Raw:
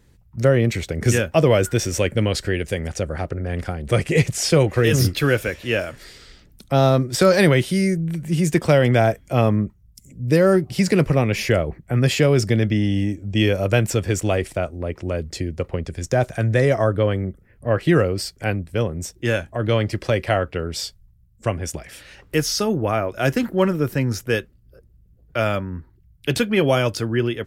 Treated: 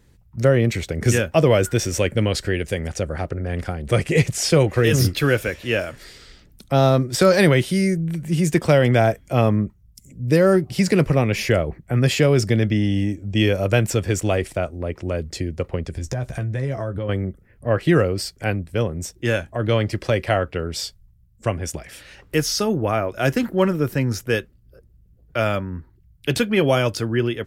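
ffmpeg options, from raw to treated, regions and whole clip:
-filter_complex "[0:a]asettb=1/sr,asplit=3[a][b][c];[a]atrim=end=15.954[d];[b]atrim=start=15.95:end=17.09,asetpts=PTS-STARTPTS,afade=t=in:d=0.004:c=qsin,afade=t=out:st=1.136:d=0.004:c=qsin,lowshelf=f=190:g=10,acompressor=threshold=-24dB:ratio=4:attack=3.2:release=140:knee=1:detection=peak,asplit=2[e][f];[f]adelay=15,volume=-8dB[g];[e][g]amix=inputs=2:normalize=0,atrim=end_sample=50274[h];[c]atrim=start=17.086[i];[d][h]acrossfade=d=0.004:c1=hsin:c2=qsin[j];[j][i]acrossfade=d=0.004:c1=qsin:c2=hsin"

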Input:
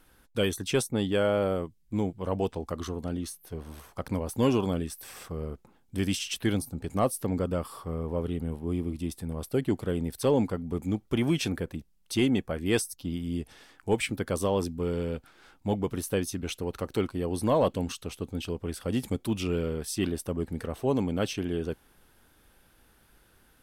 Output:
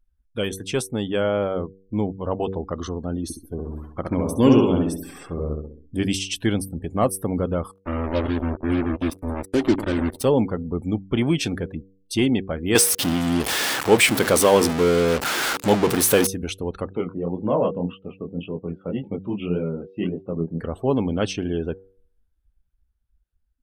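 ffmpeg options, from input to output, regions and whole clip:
-filter_complex "[0:a]asettb=1/sr,asplit=3[a][b][c];[a]atrim=end=3.234[d];[b]atrim=start=3.23:end=6.03,asetpts=PTS-STARTPTS,afade=t=in:d=0.004:c=qsin,afade=t=out:st=2.796:d=0.004:c=qsin,equalizer=f=300:t=o:w=0.62:g=6,asplit=2[e][f];[f]adelay=66,lowpass=f=4.2k:p=1,volume=-3.5dB,asplit=2[g][h];[h]adelay=66,lowpass=f=4.2k:p=1,volume=0.51,asplit=2[i][j];[j]adelay=66,lowpass=f=4.2k:p=1,volume=0.51,asplit=2[k][l];[l]adelay=66,lowpass=f=4.2k:p=1,volume=0.51,asplit=2[m][n];[n]adelay=66,lowpass=f=4.2k:p=1,volume=0.51,asplit=2[o][p];[p]adelay=66,lowpass=f=4.2k:p=1,volume=0.51,asplit=2[q][r];[r]adelay=66,lowpass=f=4.2k:p=1,volume=0.51[s];[e][g][i][k][m][o][q][s]amix=inputs=8:normalize=0,atrim=end_sample=123480[t];[c]atrim=start=6.026[u];[d][t]acrossfade=d=0.004:c1=hsin:c2=qsin[v];[v][u]acrossfade=d=0.004:c1=qsin:c2=hsin,asettb=1/sr,asplit=3[w][x][y];[w]atrim=end=7.714[z];[x]atrim=start=7.71:end=10.24,asetpts=PTS-STARTPTS,afade=t=in:d=0.004:c=qsin,afade=t=out:st=2.526:d=0.004:c=qsin,aecho=1:1:3.3:0.8,atrim=end_sample=111573,aecho=1:1:96|192|288|384:0.2|0.0858|0.0369|0.0159,atrim=end_sample=111573,acrusher=bits=4:mix=0:aa=0.5[aa];[y]atrim=start=10.236[ab];[z][aa]acrossfade=d=0.004:c1=hsin:c2=qsin[ac];[ac][ab]acrossfade=d=0.004:c1=qsin:c2=hsin,asettb=1/sr,asplit=3[ad][ae][af];[ad]atrim=end=12.754[ag];[ae]atrim=start=12.75:end=16.27,asetpts=PTS-STARTPTS,afade=t=in:d=0.004:c=qsin,afade=t=out:st=3.516:d=0.004:c=qsin,aeval=exprs='val(0)+0.5*0.0355*sgn(val(0))':c=same,highpass=f=320:p=1,acontrast=78[ah];[af]atrim=start=16.266[ai];[ag][ah]acrossfade=d=0.004:c1=hsin:c2=qsin[aj];[aj][ai]acrossfade=d=0.004:c1=qsin:c2=hsin,asettb=1/sr,asplit=3[ak][al][am];[ak]atrim=end=16.894[an];[al]atrim=start=16.89:end=20.61,asetpts=PTS-STARTPTS,afade=t=in:d=0.004:c=qsin,afade=t=out:st=3.716:d=0.004:c=qsin,flanger=delay=19.5:depth=5.9:speed=1.8,highpass=140,equalizer=f=170:t=q:w=4:g=8,equalizer=f=500:t=q:w=4:g=3,equalizer=f=1.7k:t=q:w=4:g=-5,lowpass=f=2.9k:w=0.5412,lowpass=f=2.9k:w=1.3066[ao];[am]atrim=start=20.606[ap];[an][ao]acrossfade=d=0.004:c1=hsin:c2=qsin[aq];[aq][ap]acrossfade=d=0.004:c1=qsin:c2=hsin,afftdn=nr=33:nf=-47,bandreject=f=95.84:t=h:w=4,bandreject=f=191.68:t=h:w=4,bandreject=f=287.52:t=h:w=4,bandreject=f=383.36:t=h:w=4,bandreject=f=479.2:t=h:w=4,dynaudnorm=f=260:g=11:m=4dB,volume=1.5dB"

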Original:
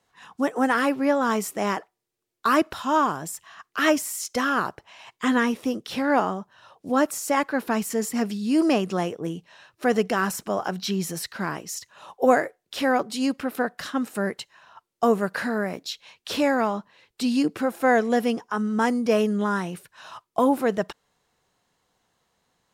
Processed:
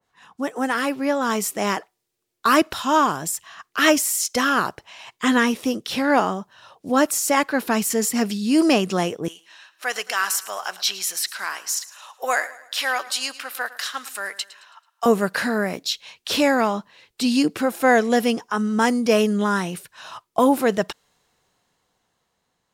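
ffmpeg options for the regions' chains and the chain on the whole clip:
-filter_complex "[0:a]asettb=1/sr,asplit=3[a][b][c];[a]atrim=end=9.284[d];[b]atrim=start=9.28:end=15.06,asetpts=PTS-STARTPTS,afade=t=in:d=0.004:c=qsin,afade=t=out:st=5.776:d=0.004:c=qsin,highpass=1.1k,aecho=1:1:109|218|327|436:0.141|0.0622|0.0273|0.012,atrim=end_sample=254898[e];[c]atrim=start=15.056[f];[d][e]acrossfade=d=0.004:c1=hsin:c2=qsin[g];[g][f]acrossfade=d=0.004:c1=qsin:c2=hsin,dynaudnorm=f=400:g=7:m=6.5dB,adynamicequalizer=threshold=0.02:dfrequency=2200:dqfactor=0.7:tfrequency=2200:tqfactor=0.7:attack=5:release=100:ratio=0.375:range=3:mode=boostabove:tftype=highshelf,volume=-2.5dB"

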